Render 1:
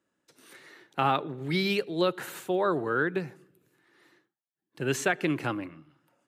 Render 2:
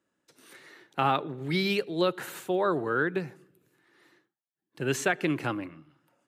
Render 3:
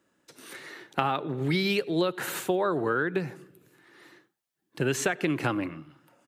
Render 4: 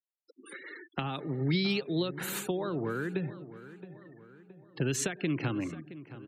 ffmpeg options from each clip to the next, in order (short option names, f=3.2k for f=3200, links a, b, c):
-af anull
-filter_complex "[0:a]acompressor=threshold=-31dB:ratio=6,asplit=2[a][b];[b]adelay=93.29,volume=-28dB,highshelf=f=4k:g=-2.1[c];[a][c]amix=inputs=2:normalize=0,volume=8dB"
-filter_complex "[0:a]afftfilt=real='re*gte(hypot(re,im),0.01)':imag='im*gte(hypot(re,im),0.01)':win_size=1024:overlap=0.75,acrossover=split=300|3000[a][b][c];[b]acompressor=threshold=-40dB:ratio=3[d];[a][d][c]amix=inputs=3:normalize=0,asplit=2[e][f];[f]adelay=670,lowpass=f=2.5k:p=1,volume=-15dB,asplit=2[g][h];[h]adelay=670,lowpass=f=2.5k:p=1,volume=0.5,asplit=2[i][j];[j]adelay=670,lowpass=f=2.5k:p=1,volume=0.5,asplit=2[k][l];[l]adelay=670,lowpass=f=2.5k:p=1,volume=0.5,asplit=2[m][n];[n]adelay=670,lowpass=f=2.5k:p=1,volume=0.5[o];[e][g][i][k][m][o]amix=inputs=6:normalize=0"